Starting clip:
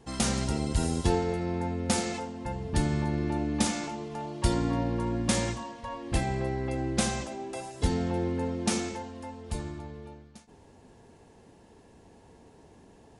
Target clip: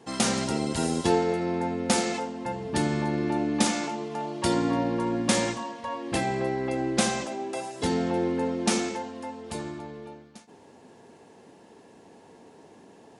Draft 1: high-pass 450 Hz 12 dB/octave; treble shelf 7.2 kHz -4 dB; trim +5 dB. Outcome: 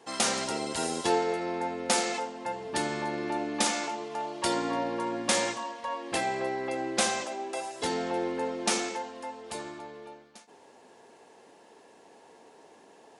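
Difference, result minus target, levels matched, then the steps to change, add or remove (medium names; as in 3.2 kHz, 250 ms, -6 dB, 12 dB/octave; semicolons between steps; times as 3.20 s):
250 Hz band -5.0 dB
change: high-pass 200 Hz 12 dB/octave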